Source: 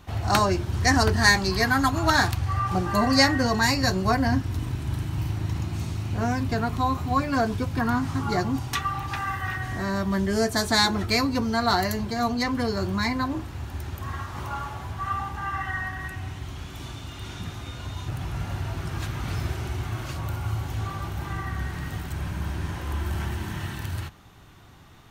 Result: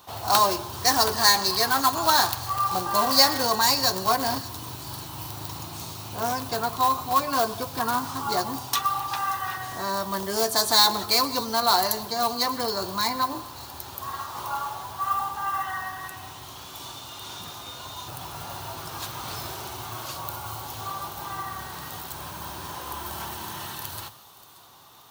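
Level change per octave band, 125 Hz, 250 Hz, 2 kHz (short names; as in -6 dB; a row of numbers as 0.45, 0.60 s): -13.5, -9.0, -4.5 dB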